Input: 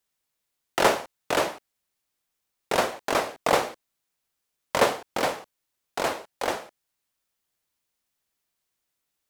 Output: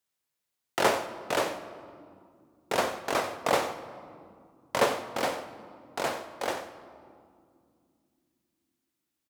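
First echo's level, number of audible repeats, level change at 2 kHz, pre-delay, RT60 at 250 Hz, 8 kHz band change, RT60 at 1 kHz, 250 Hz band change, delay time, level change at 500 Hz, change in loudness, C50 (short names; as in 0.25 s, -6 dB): -14.0 dB, 1, -3.5 dB, 5 ms, 4.1 s, -3.5 dB, 2.1 s, -3.0 dB, 92 ms, -3.0 dB, -3.5 dB, 10.0 dB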